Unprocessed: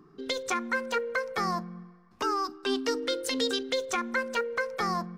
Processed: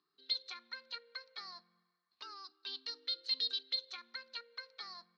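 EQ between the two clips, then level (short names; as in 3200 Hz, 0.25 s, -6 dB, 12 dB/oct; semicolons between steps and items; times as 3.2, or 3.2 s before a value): band-pass 4200 Hz, Q 13; air absorption 220 m; +11.5 dB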